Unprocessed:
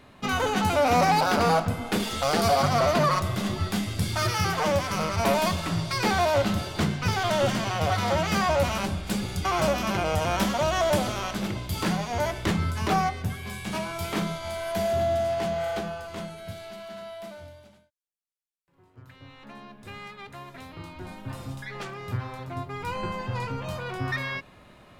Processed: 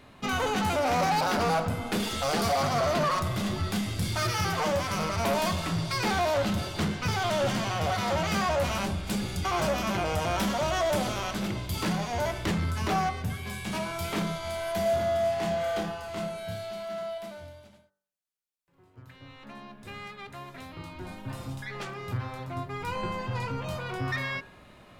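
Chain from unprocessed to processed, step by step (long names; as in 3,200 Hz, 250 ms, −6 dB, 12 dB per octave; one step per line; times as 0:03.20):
hum removal 48.59 Hz, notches 39
soft clipping −21 dBFS, distortion −14 dB
0:14.83–0:17.18: flutter between parallel walls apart 4.9 metres, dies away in 0.31 s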